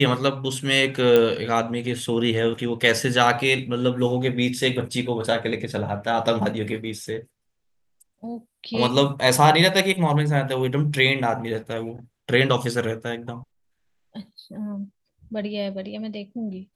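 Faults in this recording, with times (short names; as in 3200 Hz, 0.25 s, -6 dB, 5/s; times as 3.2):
1.16 pop -7 dBFS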